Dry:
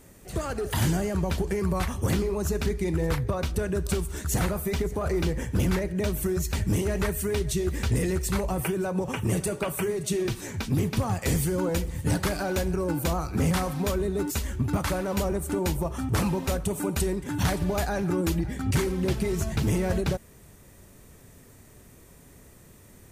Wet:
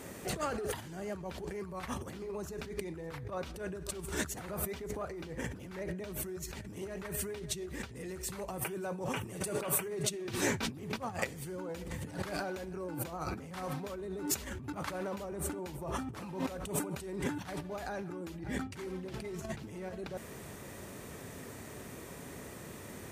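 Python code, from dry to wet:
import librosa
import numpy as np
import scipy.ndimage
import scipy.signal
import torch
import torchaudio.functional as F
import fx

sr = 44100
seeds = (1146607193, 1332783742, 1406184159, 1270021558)

y = fx.high_shelf(x, sr, hz=5300.0, db=fx.steps((0.0, -7.5), (8.08, -2.0), (9.85, -8.5)))
y = fx.over_compress(y, sr, threshold_db=-37.0, ratio=-1.0)
y = scipy.signal.sosfilt(scipy.signal.butter(2, 60.0, 'highpass', fs=sr, output='sos'), y)
y = fx.low_shelf(y, sr, hz=150.0, db=-11.0)
y = y * librosa.db_to_amplitude(1.0)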